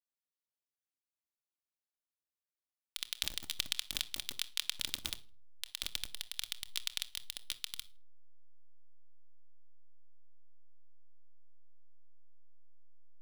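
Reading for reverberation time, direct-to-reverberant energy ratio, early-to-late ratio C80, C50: 0.45 s, 8.5 dB, 24.5 dB, 18.5 dB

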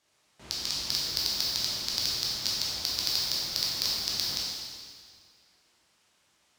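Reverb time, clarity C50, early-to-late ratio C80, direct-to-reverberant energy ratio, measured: 2.0 s, -2.0 dB, 0.0 dB, -6.0 dB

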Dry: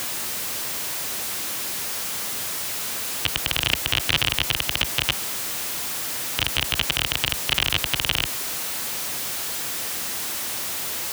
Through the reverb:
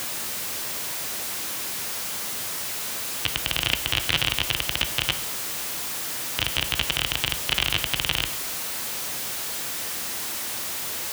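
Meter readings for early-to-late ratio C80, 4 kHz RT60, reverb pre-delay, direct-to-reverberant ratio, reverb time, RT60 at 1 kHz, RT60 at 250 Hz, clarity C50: 16.5 dB, 0.60 s, 10 ms, 9.5 dB, 0.75 s, 0.70 s, 0.85 s, 13.5 dB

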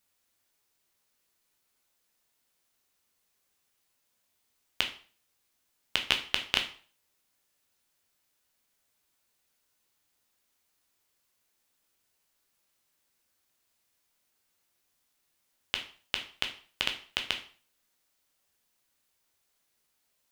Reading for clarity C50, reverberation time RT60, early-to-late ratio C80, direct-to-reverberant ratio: 11.0 dB, 0.40 s, 15.0 dB, 4.0 dB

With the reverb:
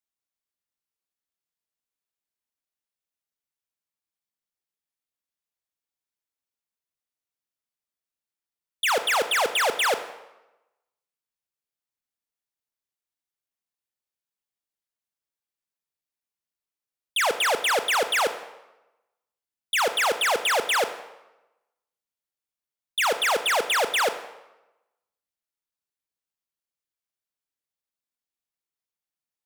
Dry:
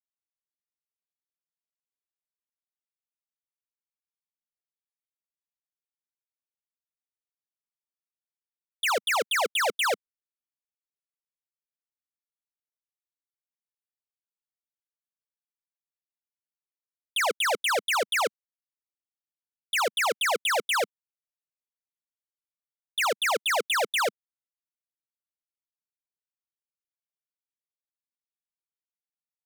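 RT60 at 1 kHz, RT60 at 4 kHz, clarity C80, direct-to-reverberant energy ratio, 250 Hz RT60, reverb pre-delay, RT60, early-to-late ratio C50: 1.0 s, 0.80 s, 14.0 dB, 10.0 dB, 0.95 s, 22 ms, 1.0 s, 12.0 dB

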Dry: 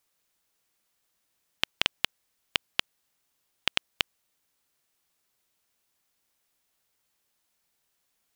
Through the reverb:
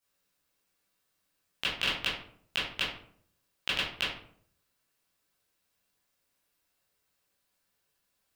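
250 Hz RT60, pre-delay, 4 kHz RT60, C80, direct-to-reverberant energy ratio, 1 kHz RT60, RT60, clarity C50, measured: 0.75 s, 14 ms, 0.35 s, 7.5 dB, -11.5 dB, 0.55 s, 0.60 s, 3.0 dB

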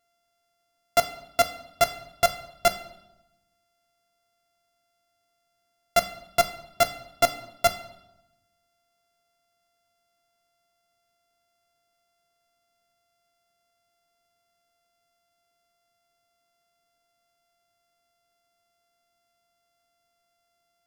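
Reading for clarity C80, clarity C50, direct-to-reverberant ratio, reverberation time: 15.5 dB, 13.0 dB, 8.0 dB, 0.90 s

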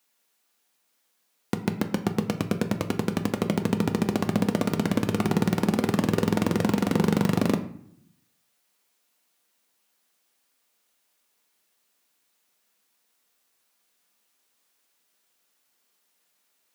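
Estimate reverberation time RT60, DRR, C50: 0.65 s, 6.5 dB, 12.0 dB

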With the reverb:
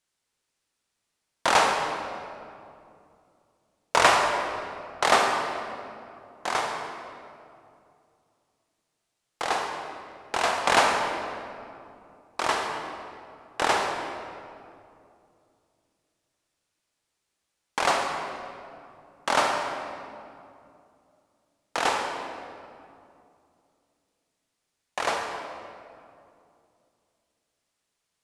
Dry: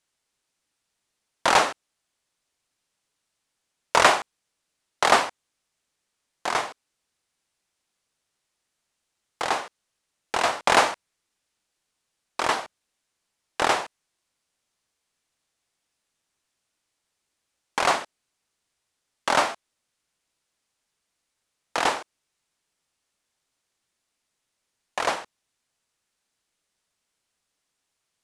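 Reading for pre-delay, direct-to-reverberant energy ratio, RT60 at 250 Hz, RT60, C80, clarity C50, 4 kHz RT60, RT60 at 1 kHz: 37 ms, 2.0 dB, 3.2 s, 2.6 s, 4.0 dB, 2.5 dB, 1.5 s, 2.4 s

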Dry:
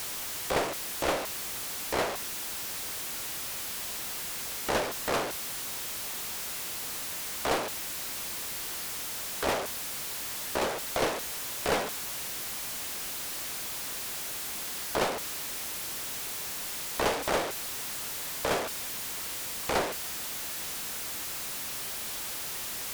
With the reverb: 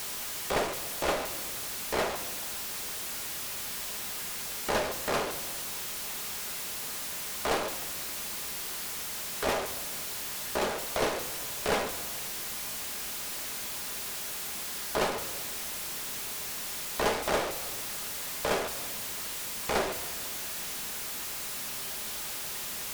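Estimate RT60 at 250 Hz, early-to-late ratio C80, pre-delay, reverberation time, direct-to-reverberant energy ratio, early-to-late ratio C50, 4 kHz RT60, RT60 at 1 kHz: 2.2 s, 14.0 dB, 5 ms, 1.6 s, 7.0 dB, 12.0 dB, 1.1 s, 1.6 s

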